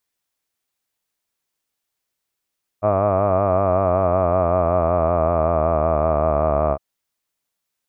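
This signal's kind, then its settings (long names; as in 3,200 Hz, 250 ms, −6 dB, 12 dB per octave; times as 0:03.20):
vowel by formant synthesis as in hud, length 3.96 s, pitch 101 Hz, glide −5.5 semitones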